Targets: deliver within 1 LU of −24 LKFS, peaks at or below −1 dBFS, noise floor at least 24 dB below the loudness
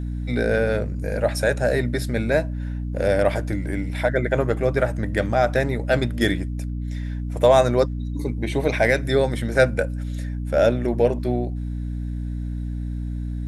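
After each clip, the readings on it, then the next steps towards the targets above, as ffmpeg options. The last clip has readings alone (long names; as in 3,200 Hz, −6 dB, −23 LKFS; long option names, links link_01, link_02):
mains hum 60 Hz; hum harmonics up to 300 Hz; level of the hum −25 dBFS; integrated loudness −23.0 LKFS; sample peak −4.0 dBFS; target loudness −24.0 LKFS
→ -af "bandreject=frequency=60:width_type=h:width=4,bandreject=frequency=120:width_type=h:width=4,bandreject=frequency=180:width_type=h:width=4,bandreject=frequency=240:width_type=h:width=4,bandreject=frequency=300:width_type=h:width=4"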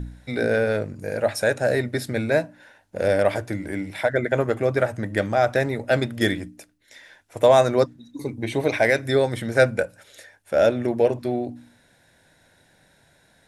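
mains hum none found; integrated loudness −22.5 LKFS; sample peak −4.5 dBFS; target loudness −24.0 LKFS
→ -af "volume=-1.5dB"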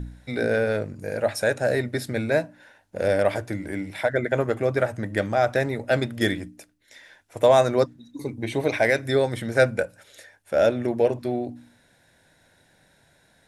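integrated loudness −24.0 LKFS; sample peak −6.0 dBFS; background noise floor −61 dBFS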